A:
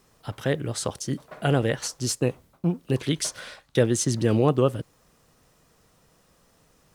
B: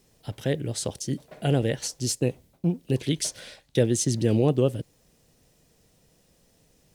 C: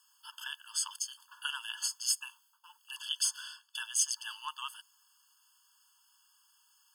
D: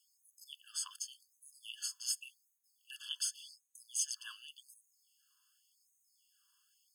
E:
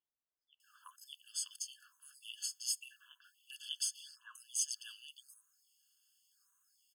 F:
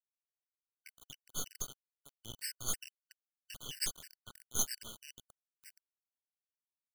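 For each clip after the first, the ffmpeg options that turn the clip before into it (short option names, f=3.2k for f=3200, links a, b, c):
-af "equalizer=f=1.2k:w=1.5:g=-13"
-af "afftfilt=real='re*eq(mod(floor(b*sr/1024/880),2),1)':imag='im*eq(mod(floor(b*sr/1024/880),2),1)':win_size=1024:overlap=0.75,volume=2.5dB"
-af "afftfilt=real='re*gte(b*sr/1024,940*pow(5800/940,0.5+0.5*sin(2*PI*0.88*pts/sr)))':imag='im*gte(b*sr/1024,940*pow(5800/940,0.5+0.5*sin(2*PI*0.88*pts/sr)))':win_size=1024:overlap=0.75,volume=-6dB"
-filter_complex "[0:a]acrossover=split=1800[a][b];[b]adelay=600[c];[a][c]amix=inputs=2:normalize=0"
-af "aecho=1:1:1067:0.0891,acrusher=bits=5:dc=4:mix=0:aa=0.000001,afftfilt=real='re*gt(sin(2*PI*3.1*pts/sr)*(1-2*mod(floor(b*sr/1024/1500),2)),0)':imag='im*gt(sin(2*PI*3.1*pts/sr)*(1-2*mod(floor(b*sr/1024/1500),2)),0)':win_size=1024:overlap=0.75,volume=7dB"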